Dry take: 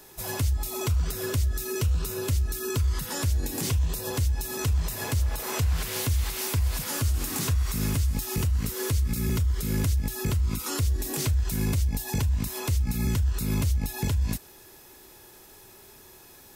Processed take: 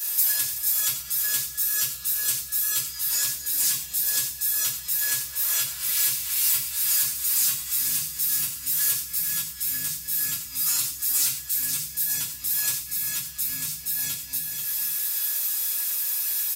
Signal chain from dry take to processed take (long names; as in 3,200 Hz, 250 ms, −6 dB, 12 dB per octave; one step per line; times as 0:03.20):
guitar amp tone stack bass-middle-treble 5-5-5
rectangular room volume 160 cubic metres, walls furnished, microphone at 2.9 metres
downward compressor 6 to 1, threshold −45 dBFS, peak gain reduction 18 dB
spectral tilt +4 dB per octave
comb filter 6.5 ms, depth 98%
on a send: multi-tap delay 89/339/487 ms −10.5/−16.5/−6 dB
on the sum: level +9 dB